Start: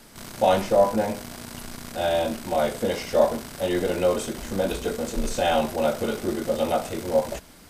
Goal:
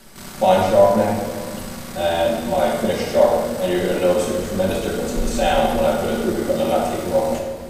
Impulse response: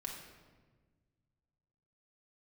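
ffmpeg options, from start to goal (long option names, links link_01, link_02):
-filter_complex "[1:a]atrim=start_sample=2205,asetrate=33957,aresample=44100[link_01];[0:a][link_01]afir=irnorm=-1:irlink=0,volume=4.5dB"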